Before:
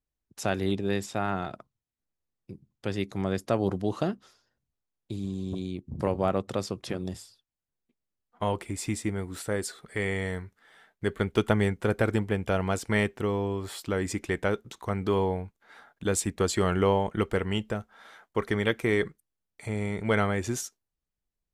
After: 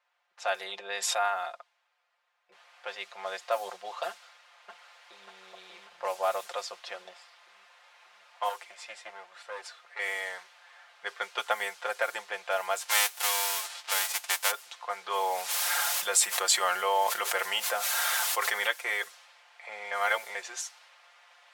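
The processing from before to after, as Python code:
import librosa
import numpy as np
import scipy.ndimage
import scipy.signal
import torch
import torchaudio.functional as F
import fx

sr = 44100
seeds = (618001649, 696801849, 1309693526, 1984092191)

y = fx.env_flatten(x, sr, amount_pct=70, at=(0.6, 1.28))
y = fx.noise_floor_step(y, sr, seeds[0], at_s=2.52, before_db=-67, after_db=-50, tilt_db=0.0)
y = fx.echo_throw(y, sr, start_s=4.09, length_s=1.18, ms=590, feedback_pct=60, wet_db=-1.5)
y = fx.tube_stage(y, sr, drive_db=25.0, bias=0.65, at=(8.49, 9.99))
y = fx.envelope_flatten(y, sr, power=0.3, at=(12.8, 14.5), fade=0.02)
y = fx.env_flatten(y, sr, amount_pct=70, at=(15.1, 18.67))
y = fx.edit(y, sr, fx.reverse_span(start_s=19.91, length_s=0.44), tone=tone)
y = scipy.signal.sosfilt(scipy.signal.cheby2(4, 40, 310.0, 'highpass', fs=sr, output='sos'), y)
y = fx.env_lowpass(y, sr, base_hz=1900.0, full_db=-28.0)
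y = y + 0.7 * np.pad(y, (int(5.7 * sr / 1000.0), 0))[:len(y)]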